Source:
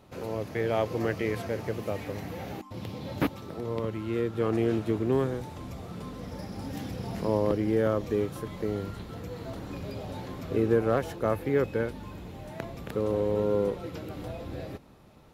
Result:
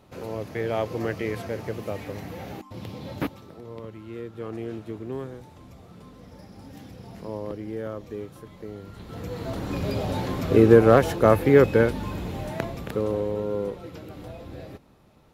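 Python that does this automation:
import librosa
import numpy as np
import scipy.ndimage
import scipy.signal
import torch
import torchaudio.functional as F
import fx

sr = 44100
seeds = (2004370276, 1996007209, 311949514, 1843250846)

y = fx.gain(x, sr, db=fx.line((3.1, 0.5), (3.62, -7.5), (8.83, -7.5), (9.2, 4.0), (9.9, 10.0), (12.4, 10.0), (13.42, -2.0)))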